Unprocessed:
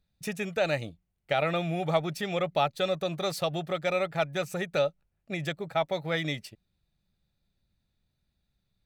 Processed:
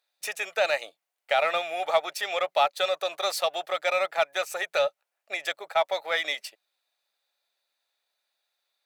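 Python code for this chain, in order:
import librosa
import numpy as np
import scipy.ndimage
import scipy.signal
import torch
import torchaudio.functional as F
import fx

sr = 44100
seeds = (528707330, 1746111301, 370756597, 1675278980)

p1 = scipy.signal.sosfilt(scipy.signal.butter(4, 590.0, 'highpass', fs=sr, output='sos'), x)
p2 = np.clip(p1, -10.0 ** (-32.0 / 20.0), 10.0 ** (-32.0 / 20.0))
p3 = p1 + (p2 * 10.0 ** (-10.5 / 20.0))
y = p3 * 10.0 ** (4.0 / 20.0)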